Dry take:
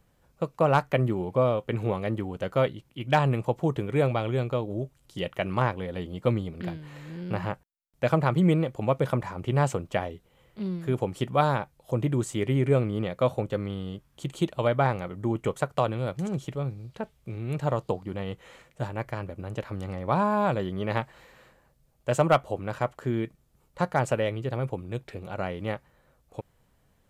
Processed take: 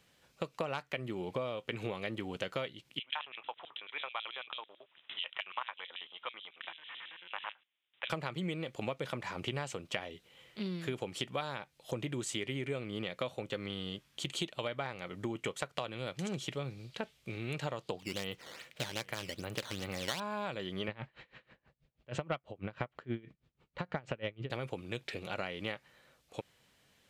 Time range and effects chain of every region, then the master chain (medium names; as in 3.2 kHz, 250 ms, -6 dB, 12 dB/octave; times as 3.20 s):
2.99–8.10 s: compression 1.5:1, threshold -47 dBFS + LFO high-pass square 9.1 Hz 990–3700 Hz + careless resampling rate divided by 6×, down none, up filtered
17.99–20.20 s: decimation with a swept rate 10×, swing 160% 2.5 Hz + delay 820 ms -21 dB
20.88–24.50 s: low-pass 2.9 kHz + bass shelf 230 Hz +11.5 dB + logarithmic tremolo 6.2 Hz, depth 26 dB
whole clip: frequency weighting D; compression 10:1, threshold -31 dBFS; trim -2 dB